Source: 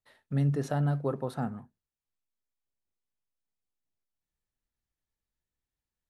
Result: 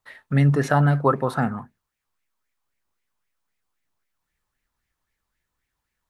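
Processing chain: LFO bell 3.8 Hz 970–2200 Hz +13 dB; gain +9 dB

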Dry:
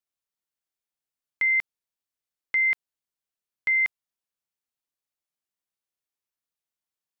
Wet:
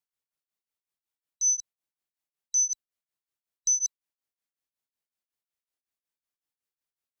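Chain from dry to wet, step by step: band-swap scrambler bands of 4000 Hz; beating tremolo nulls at 5.4 Hz

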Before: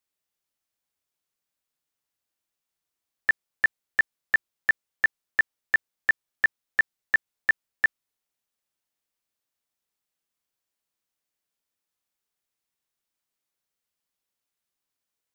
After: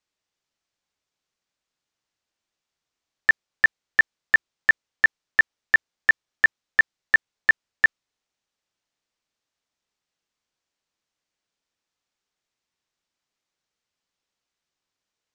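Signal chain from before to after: LPF 7000 Hz 24 dB/oct; gain +4.5 dB

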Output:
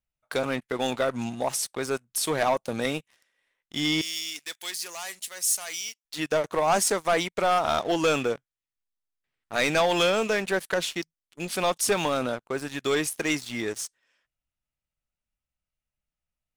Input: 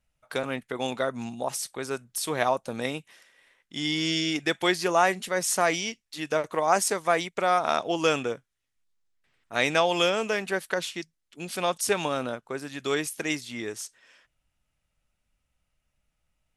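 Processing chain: sample leveller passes 3; 4.01–6.05 pre-emphasis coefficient 0.97; gain -7.5 dB

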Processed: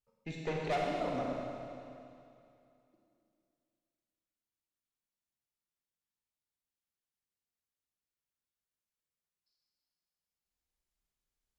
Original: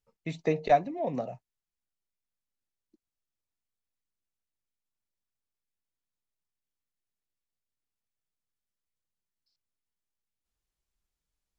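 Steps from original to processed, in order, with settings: tube stage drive 27 dB, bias 0.7; Schroeder reverb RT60 2.6 s, combs from 31 ms, DRR -2.5 dB; gain -3 dB

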